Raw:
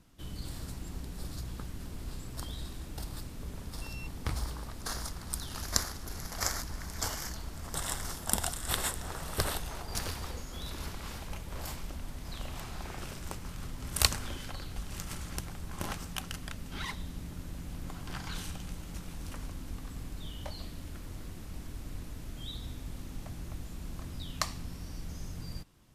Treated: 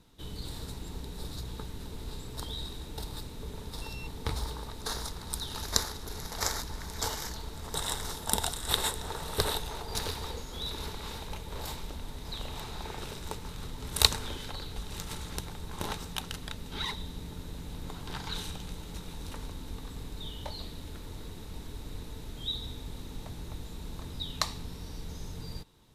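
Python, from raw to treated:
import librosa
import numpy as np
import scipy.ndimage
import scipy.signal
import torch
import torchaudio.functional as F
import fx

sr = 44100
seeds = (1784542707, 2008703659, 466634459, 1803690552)

y = fx.peak_eq(x, sr, hz=3800.0, db=12.0, octaves=0.23)
y = fx.small_body(y, sr, hz=(440.0, 890.0), ring_ms=45, db=10)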